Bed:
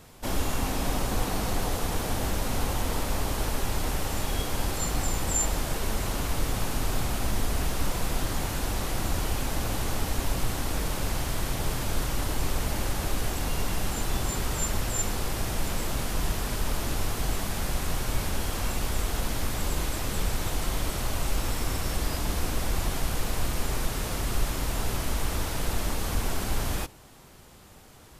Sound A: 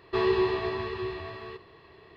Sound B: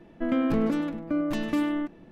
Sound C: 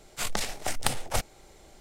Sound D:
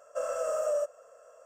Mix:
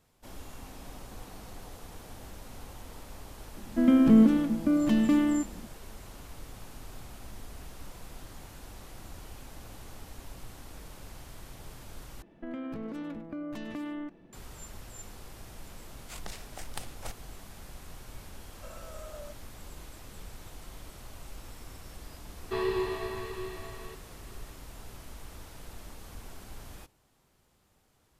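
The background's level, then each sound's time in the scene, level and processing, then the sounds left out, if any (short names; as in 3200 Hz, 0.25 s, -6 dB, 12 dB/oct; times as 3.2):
bed -17.5 dB
3.56 add B -2.5 dB + small resonant body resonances 220/3100 Hz, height 12 dB
12.22 replace with B -6 dB + compressor 10:1, threshold -28 dBFS
15.91 add C -13.5 dB
18.47 add D -12 dB + BPF 760–7300 Hz
22.38 add A -5.5 dB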